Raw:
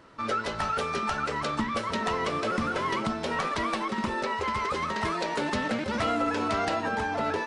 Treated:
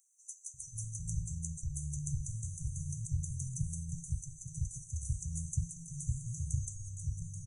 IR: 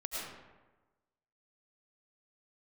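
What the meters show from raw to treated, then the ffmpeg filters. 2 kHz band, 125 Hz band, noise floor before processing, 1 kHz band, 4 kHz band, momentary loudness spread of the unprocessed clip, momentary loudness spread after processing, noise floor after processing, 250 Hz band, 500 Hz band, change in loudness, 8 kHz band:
below −40 dB, +4.0 dB, −35 dBFS, below −40 dB, below −40 dB, 2 LU, 5 LU, −59 dBFS, below −15 dB, below −40 dB, −11.0 dB, +5.0 dB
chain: -filter_complex "[0:a]bandreject=frequency=50:width_type=h:width=6,bandreject=frequency=100:width_type=h:width=6,bandreject=frequency=150:width_type=h:width=6,afftfilt=real='re*(1-between(b*sr/4096,170,5900))':imag='im*(1-between(b*sr/4096,170,5900))':win_size=4096:overlap=0.75,equalizer=frequency=160:width_type=o:width=0.23:gain=-3,acrossover=split=4400[link_01][link_02];[link_01]adelay=540[link_03];[link_03][link_02]amix=inputs=2:normalize=0,volume=7dB"

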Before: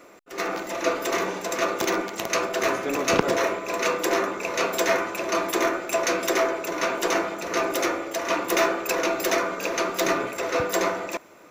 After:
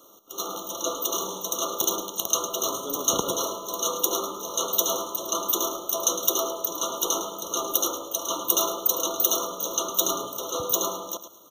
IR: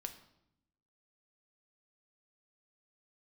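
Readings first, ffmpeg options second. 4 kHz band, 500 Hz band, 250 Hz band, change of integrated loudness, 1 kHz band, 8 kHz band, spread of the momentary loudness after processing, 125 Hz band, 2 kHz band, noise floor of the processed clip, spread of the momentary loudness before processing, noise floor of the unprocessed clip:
+2.0 dB, −7.0 dB, −7.0 dB, −0.5 dB, −4.5 dB, +7.5 dB, 7 LU, −6.5 dB, −27.0 dB, −44 dBFS, 5 LU, −49 dBFS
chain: -filter_complex "[0:a]bandreject=frequency=700:width=12,crystalizer=i=6.5:c=0,asplit=2[link_01][link_02];[link_02]aecho=0:1:107|214|321:0.282|0.0705|0.0176[link_03];[link_01][link_03]amix=inputs=2:normalize=0,afftfilt=real='re*eq(mod(floor(b*sr/1024/1400),2),0)':imag='im*eq(mod(floor(b*sr/1024/1400),2),0)':win_size=1024:overlap=0.75,volume=-7.5dB"

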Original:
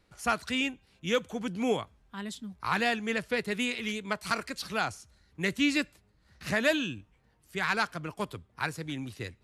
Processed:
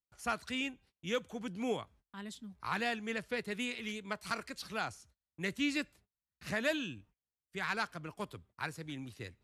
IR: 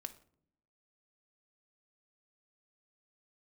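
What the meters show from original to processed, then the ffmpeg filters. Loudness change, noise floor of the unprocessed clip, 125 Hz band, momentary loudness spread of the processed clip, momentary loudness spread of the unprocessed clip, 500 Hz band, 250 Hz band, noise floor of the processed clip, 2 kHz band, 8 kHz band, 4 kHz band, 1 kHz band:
−7.0 dB, −67 dBFS, −7.0 dB, 13 LU, 13 LU, −7.0 dB, −7.0 dB, below −85 dBFS, −7.0 dB, −7.0 dB, −7.0 dB, −7.0 dB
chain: -af "agate=range=-31dB:threshold=-54dB:ratio=16:detection=peak,volume=-7dB"

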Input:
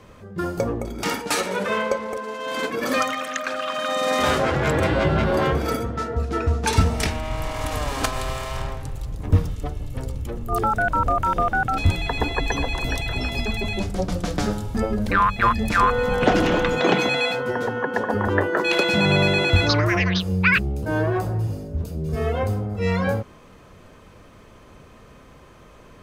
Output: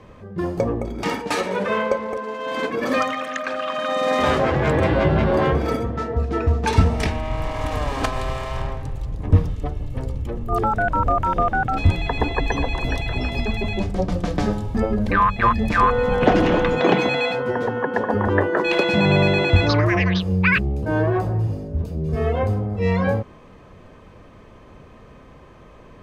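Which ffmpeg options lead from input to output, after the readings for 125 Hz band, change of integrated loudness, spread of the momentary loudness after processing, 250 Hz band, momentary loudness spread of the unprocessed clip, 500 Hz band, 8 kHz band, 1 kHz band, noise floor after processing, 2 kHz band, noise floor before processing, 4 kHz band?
+2.5 dB, +1.5 dB, 10 LU, +2.5 dB, 11 LU, +2.5 dB, −7.0 dB, +1.0 dB, −46 dBFS, −0.5 dB, −48 dBFS, −2.5 dB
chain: -af "lowpass=frequency=2300:poles=1,bandreject=frequency=1400:width=11,volume=2.5dB"

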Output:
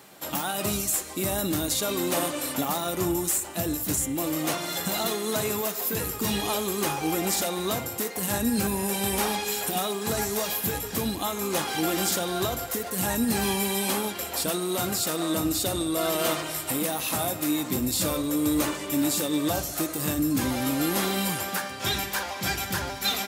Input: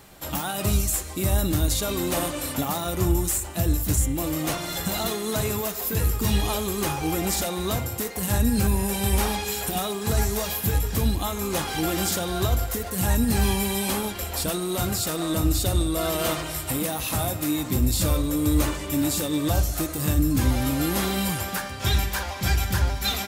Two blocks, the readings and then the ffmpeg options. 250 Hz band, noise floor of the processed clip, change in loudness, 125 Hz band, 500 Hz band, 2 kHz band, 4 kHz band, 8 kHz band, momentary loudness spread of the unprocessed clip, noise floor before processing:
−1.5 dB, −36 dBFS, −1.5 dB, −10.0 dB, 0.0 dB, 0.0 dB, 0.0 dB, 0.0 dB, 5 LU, −34 dBFS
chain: -af "highpass=190"

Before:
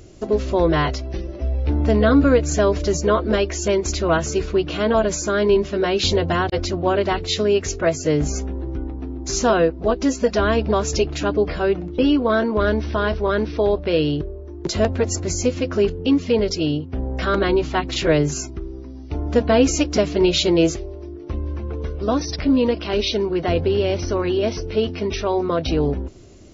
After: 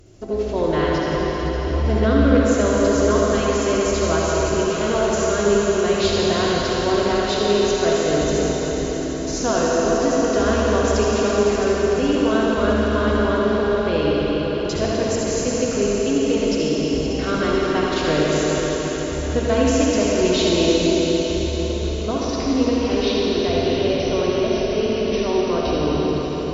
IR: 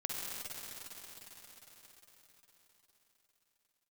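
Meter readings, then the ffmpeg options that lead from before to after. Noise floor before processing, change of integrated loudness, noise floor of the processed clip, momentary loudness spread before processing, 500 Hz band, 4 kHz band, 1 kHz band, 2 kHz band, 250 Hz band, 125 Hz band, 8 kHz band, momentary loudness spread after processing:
−35 dBFS, +1.0 dB, −24 dBFS, 11 LU, +1.5 dB, +1.0 dB, +1.0 dB, +1.0 dB, +1.0 dB, −1.0 dB, can't be measured, 6 LU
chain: -filter_complex "[1:a]atrim=start_sample=2205,asetrate=35280,aresample=44100[link_01];[0:a][link_01]afir=irnorm=-1:irlink=0,volume=-4dB"

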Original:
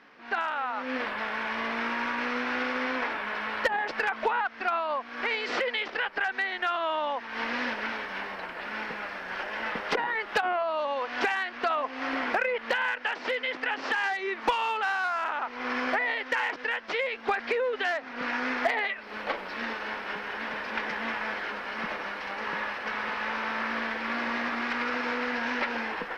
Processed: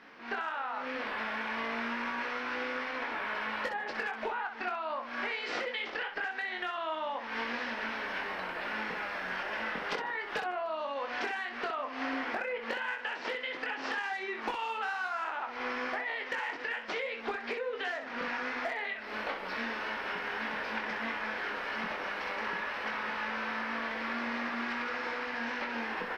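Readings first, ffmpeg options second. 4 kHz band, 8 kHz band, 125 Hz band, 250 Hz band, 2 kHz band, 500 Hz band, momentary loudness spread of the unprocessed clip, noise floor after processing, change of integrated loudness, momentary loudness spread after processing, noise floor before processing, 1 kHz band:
−5.0 dB, −5.0 dB, can't be measured, −4.5 dB, −5.0 dB, −6.0 dB, 6 LU, −42 dBFS, −5.0 dB, 2 LU, −42 dBFS, −5.5 dB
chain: -filter_complex "[0:a]asplit=2[link_01][link_02];[link_02]aecho=0:1:147|294|441|588:0.0708|0.0404|0.023|0.0131[link_03];[link_01][link_03]amix=inputs=2:normalize=0,acompressor=threshold=-34dB:ratio=6,asplit=2[link_04][link_05];[link_05]aecho=0:1:22|64:0.531|0.422[link_06];[link_04][link_06]amix=inputs=2:normalize=0"

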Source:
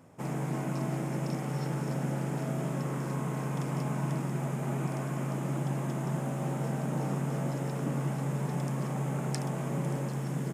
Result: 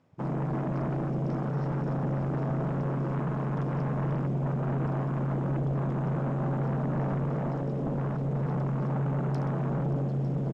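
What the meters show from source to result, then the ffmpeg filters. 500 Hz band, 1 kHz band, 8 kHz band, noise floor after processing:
+3.0 dB, +2.0 dB, below −20 dB, −31 dBFS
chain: -filter_complex "[0:a]afwtdn=0.0178,lowpass=frequency=4300:width_type=q:width=1.5,aeval=exprs='0.1*sin(PI/2*2.51*val(0)/0.1)':channel_layout=same,asplit=2[link_01][link_02];[link_02]aecho=0:1:902:0.2[link_03];[link_01][link_03]amix=inputs=2:normalize=0,volume=-6dB"

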